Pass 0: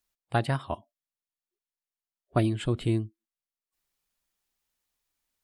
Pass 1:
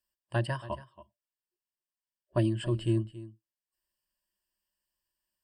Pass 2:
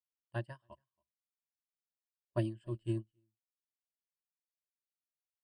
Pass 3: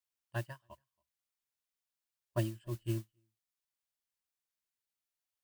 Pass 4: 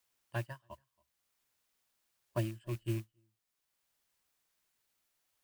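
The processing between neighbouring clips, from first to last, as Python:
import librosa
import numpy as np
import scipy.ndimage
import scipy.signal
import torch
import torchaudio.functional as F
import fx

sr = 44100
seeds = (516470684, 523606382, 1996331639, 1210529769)

y1 = fx.ripple_eq(x, sr, per_octave=1.3, db=14)
y1 = y1 + 10.0 ** (-16.5 / 20.0) * np.pad(y1, (int(278 * sr / 1000.0), 0))[:len(y1)]
y1 = y1 * librosa.db_to_amplitude(-7.0)
y2 = fx.upward_expand(y1, sr, threshold_db=-42.0, expansion=2.5)
y2 = y2 * librosa.db_to_amplitude(-4.5)
y3 = fx.mod_noise(y2, sr, seeds[0], snr_db=23)
y3 = fx.peak_eq(y3, sr, hz=310.0, db=-5.5, octaves=2.6)
y3 = y3 * librosa.db_to_amplitude(3.5)
y4 = fx.rattle_buzz(y3, sr, strikes_db=-39.0, level_db=-41.0)
y4 = fx.band_squash(y4, sr, depth_pct=40)
y4 = y4 * librosa.db_to_amplitude(1.0)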